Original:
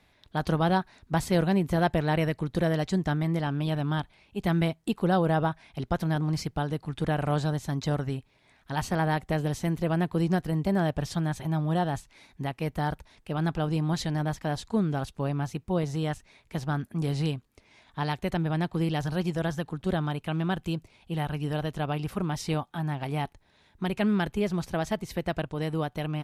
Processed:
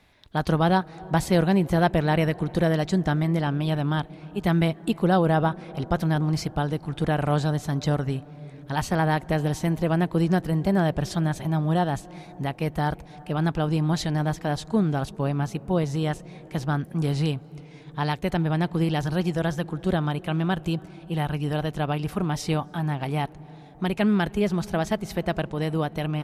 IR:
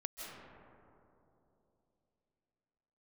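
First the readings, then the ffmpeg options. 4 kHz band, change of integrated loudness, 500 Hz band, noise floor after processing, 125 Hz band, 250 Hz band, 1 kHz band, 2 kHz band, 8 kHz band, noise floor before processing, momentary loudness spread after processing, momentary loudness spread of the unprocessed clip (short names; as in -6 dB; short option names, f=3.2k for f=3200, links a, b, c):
+3.5 dB, +3.5 dB, +4.0 dB, -46 dBFS, +3.5 dB, +4.0 dB, +3.5 dB, +3.5 dB, +3.0 dB, -64 dBFS, 8 LU, 8 LU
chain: -filter_complex "[0:a]asplit=2[a][b];[1:a]atrim=start_sample=2205,asetrate=25137,aresample=44100,highshelf=f=3.5k:g=-10.5[c];[b][c]afir=irnorm=-1:irlink=0,volume=-20dB[d];[a][d]amix=inputs=2:normalize=0,volume=3dB"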